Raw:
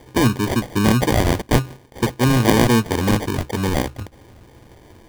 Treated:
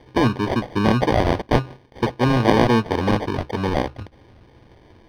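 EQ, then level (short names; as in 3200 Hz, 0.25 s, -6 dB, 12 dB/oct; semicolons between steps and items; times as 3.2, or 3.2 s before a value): dynamic EQ 690 Hz, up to +6 dB, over -32 dBFS, Q 0.77; polynomial smoothing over 15 samples; -3.5 dB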